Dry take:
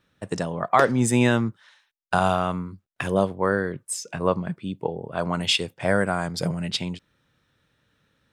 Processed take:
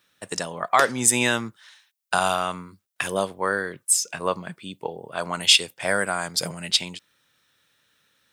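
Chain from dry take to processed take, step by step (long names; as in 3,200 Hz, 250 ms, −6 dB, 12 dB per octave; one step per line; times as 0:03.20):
spectral tilt +3.5 dB per octave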